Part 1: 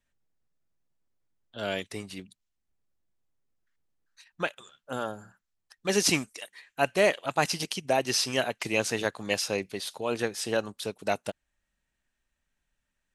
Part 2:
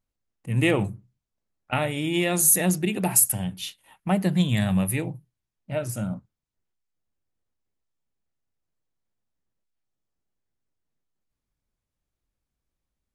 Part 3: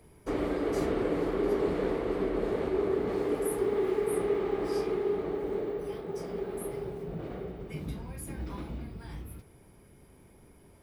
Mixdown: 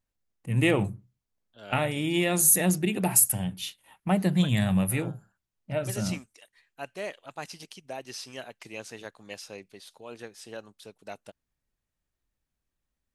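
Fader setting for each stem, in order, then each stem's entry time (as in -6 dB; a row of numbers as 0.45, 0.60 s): -13.0 dB, -1.5 dB, off; 0.00 s, 0.00 s, off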